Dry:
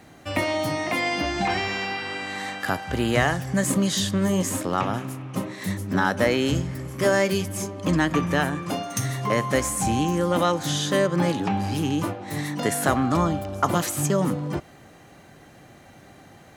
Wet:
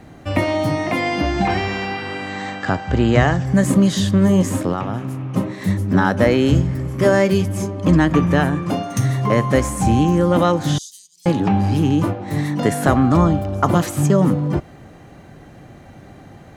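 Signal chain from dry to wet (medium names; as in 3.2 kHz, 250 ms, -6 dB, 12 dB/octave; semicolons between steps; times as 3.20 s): 10.78–11.26 s: inverse Chebyshev high-pass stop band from 1.6 kHz, stop band 60 dB; tilt EQ -2 dB/octave; 2.29–3.46 s: brick-wall FIR low-pass 8.3 kHz; 4.72–5.32 s: compression 3:1, threshold -25 dBFS, peak gain reduction 6.5 dB; trim +4 dB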